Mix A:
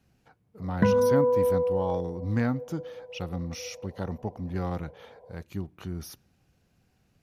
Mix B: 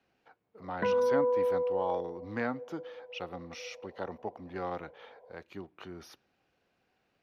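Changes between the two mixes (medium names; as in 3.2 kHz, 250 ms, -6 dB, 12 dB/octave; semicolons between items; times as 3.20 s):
background -3.5 dB; master: add three-band isolator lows -19 dB, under 310 Hz, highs -18 dB, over 4.4 kHz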